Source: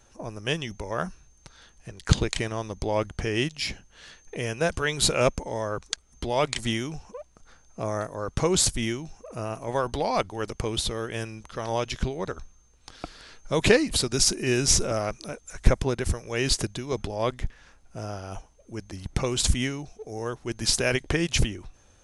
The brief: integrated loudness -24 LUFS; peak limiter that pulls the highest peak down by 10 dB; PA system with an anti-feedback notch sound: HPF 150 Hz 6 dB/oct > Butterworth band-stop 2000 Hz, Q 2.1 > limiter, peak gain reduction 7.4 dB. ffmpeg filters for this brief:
-af "alimiter=limit=-13dB:level=0:latency=1,highpass=f=150:p=1,asuperstop=centerf=2000:order=8:qfactor=2.1,volume=7dB,alimiter=limit=-10.5dB:level=0:latency=1"

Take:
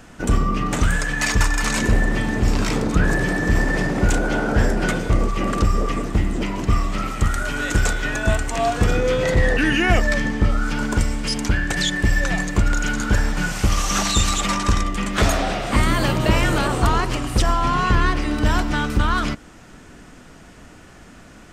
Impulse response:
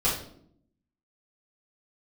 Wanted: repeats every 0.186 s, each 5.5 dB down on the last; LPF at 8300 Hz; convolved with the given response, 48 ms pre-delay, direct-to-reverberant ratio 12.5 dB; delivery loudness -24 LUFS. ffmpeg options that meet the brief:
-filter_complex "[0:a]lowpass=8.3k,aecho=1:1:186|372|558|744|930|1116|1302:0.531|0.281|0.149|0.079|0.0419|0.0222|0.0118,asplit=2[a][b];[1:a]atrim=start_sample=2205,adelay=48[c];[b][c]afir=irnorm=-1:irlink=0,volume=-24dB[d];[a][d]amix=inputs=2:normalize=0,volume=-5.5dB"

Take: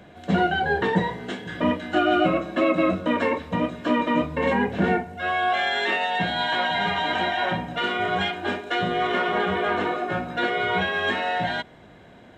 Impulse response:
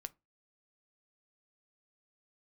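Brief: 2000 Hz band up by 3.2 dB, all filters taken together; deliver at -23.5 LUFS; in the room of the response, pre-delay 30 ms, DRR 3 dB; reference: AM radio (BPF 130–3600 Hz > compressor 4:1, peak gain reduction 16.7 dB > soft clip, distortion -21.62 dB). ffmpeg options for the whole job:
-filter_complex "[0:a]equalizer=f=2k:t=o:g=4.5,asplit=2[a][b];[1:a]atrim=start_sample=2205,adelay=30[c];[b][c]afir=irnorm=-1:irlink=0,volume=1dB[d];[a][d]amix=inputs=2:normalize=0,highpass=130,lowpass=3.6k,acompressor=threshold=-34dB:ratio=4,asoftclip=threshold=-25.5dB,volume=11.5dB"

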